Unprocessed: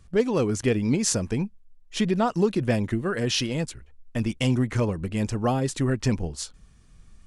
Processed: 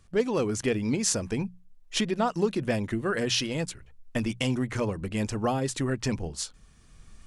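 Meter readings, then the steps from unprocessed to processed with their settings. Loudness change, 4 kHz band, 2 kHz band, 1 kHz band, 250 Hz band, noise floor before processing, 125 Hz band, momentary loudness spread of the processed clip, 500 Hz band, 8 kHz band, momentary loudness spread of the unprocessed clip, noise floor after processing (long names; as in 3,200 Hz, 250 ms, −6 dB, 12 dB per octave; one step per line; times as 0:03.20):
−3.5 dB, −0.5 dB, −0.5 dB, −1.5 dB, −4.0 dB, −54 dBFS, −6.0 dB, 8 LU, −2.5 dB, −1.0 dB, 10 LU, −56 dBFS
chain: camcorder AGC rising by 6.8 dB per second
low-shelf EQ 320 Hz −4.5 dB
mains-hum notches 60/120/180 Hz
level −1.5 dB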